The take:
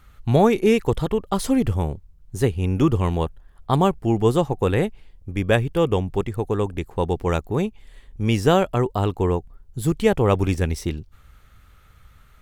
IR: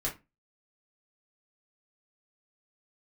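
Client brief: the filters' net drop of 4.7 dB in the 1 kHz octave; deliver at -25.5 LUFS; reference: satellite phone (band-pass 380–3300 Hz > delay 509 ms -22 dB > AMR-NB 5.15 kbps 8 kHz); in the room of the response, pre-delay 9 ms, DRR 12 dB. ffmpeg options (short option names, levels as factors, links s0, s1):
-filter_complex "[0:a]equalizer=f=1000:t=o:g=-6,asplit=2[s0][s1];[1:a]atrim=start_sample=2205,adelay=9[s2];[s1][s2]afir=irnorm=-1:irlink=0,volume=0.15[s3];[s0][s3]amix=inputs=2:normalize=0,highpass=380,lowpass=3300,aecho=1:1:509:0.0794,volume=1.26" -ar 8000 -c:a libopencore_amrnb -b:a 5150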